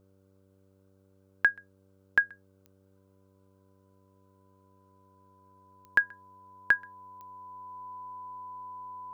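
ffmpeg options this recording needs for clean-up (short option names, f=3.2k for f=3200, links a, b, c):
-af "adeclick=t=4,bandreject=f=96.1:t=h:w=4,bandreject=f=192.2:t=h:w=4,bandreject=f=288.3:t=h:w=4,bandreject=f=384.4:t=h:w=4,bandreject=f=480.5:t=h:w=4,bandreject=f=576.6:t=h:w=4,bandreject=f=1k:w=30,agate=range=-21dB:threshold=-56dB"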